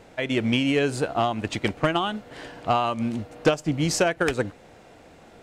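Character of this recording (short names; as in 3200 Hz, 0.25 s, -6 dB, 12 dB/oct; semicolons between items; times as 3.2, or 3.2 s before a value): noise floor -51 dBFS; spectral tilt -5.0 dB/oct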